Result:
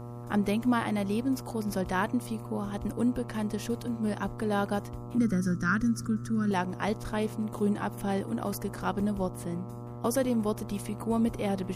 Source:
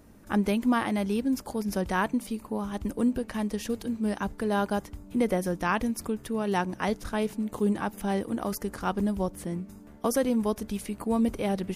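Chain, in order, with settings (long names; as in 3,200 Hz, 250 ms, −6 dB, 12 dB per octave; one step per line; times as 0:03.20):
hum with harmonics 120 Hz, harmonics 11, −39 dBFS −6 dB per octave
0:05.18–0:06.51: drawn EQ curve 100 Hz 0 dB, 140 Hz +6 dB, 210 Hz +6 dB, 890 Hz −22 dB, 1,400 Hz +9 dB, 2,400 Hz −14 dB, 3,800 Hz −8 dB, 5,800 Hz +5 dB, 14,000 Hz −10 dB
level −2 dB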